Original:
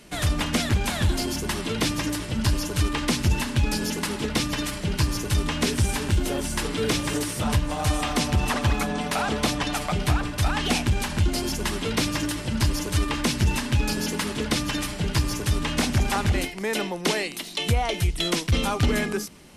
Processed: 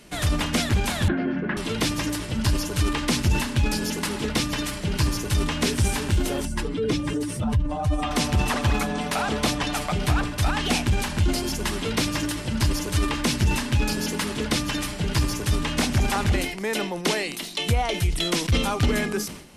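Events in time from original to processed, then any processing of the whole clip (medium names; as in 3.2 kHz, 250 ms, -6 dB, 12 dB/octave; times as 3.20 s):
1.08–1.57 s: cabinet simulation 150–2200 Hz, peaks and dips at 180 Hz +9 dB, 270 Hz +5 dB, 530 Hz +4 dB, 940 Hz -7 dB, 1.6 kHz +8 dB
6.45–8.11 s: spectral contrast enhancement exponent 1.6
whole clip: decay stretcher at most 81 dB/s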